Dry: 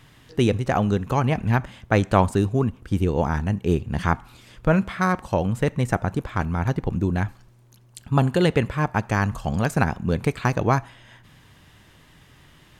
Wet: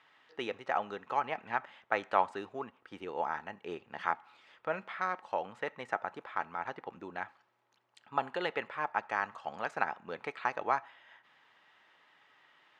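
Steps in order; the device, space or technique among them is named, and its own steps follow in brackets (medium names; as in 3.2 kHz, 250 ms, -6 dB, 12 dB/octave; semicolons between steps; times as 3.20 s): 4.10–5.32 s: dynamic bell 1.2 kHz, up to -5 dB, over -32 dBFS, Q 1.1; tin-can telephone (band-pass 650–3000 Hz; small resonant body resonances 850/1300/1900 Hz, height 6 dB); trim -7.5 dB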